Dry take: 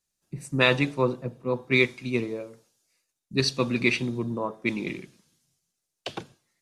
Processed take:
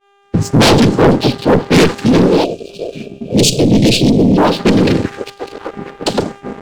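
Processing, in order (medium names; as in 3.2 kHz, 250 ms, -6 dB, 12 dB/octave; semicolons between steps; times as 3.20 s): high-pass 190 Hz 12 dB/octave; noise-vocoded speech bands 8; bass shelf 250 Hz +10 dB; valve stage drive 18 dB, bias 0.65; on a send: repeats whose band climbs or falls 601 ms, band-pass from 3.7 kHz, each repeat -1.4 oct, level -12 dB; on the sum: mains buzz 400 Hz, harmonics 5, -54 dBFS -3 dB/octave; peaking EQ 2 kHz -11.5 dB 1 oct; waveshaping leveller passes 3; time-frequency box 2.44–4.37 s, 730–2300 Hz -24 dB; expander -43 dBFS; loudness maximiser +17.5 dB; loudspeaker Doppler distortion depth 0.31 ms; trim -2.5 dB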